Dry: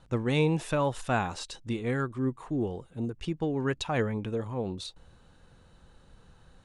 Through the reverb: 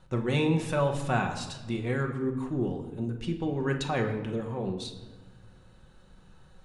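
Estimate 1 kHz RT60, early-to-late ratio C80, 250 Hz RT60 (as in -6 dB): 1.1 s, 11.0 dB, 1.7 s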